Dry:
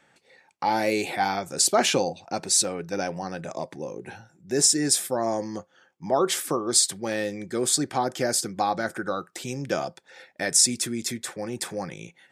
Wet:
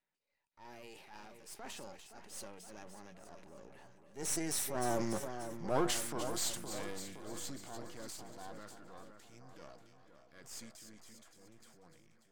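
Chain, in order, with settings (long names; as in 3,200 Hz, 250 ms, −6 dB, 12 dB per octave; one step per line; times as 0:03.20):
gain on one half-wave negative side −12 dB
source passing by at 0:05.27, 27 m/s, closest 5.4 metres
on a send: echo with a time of its own for lows and highs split 1,900 Hz, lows 516 ms, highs 293 ms, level −10 dB
on the sum: transient designer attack −7 dB, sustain +6 dB
level +2.5 dB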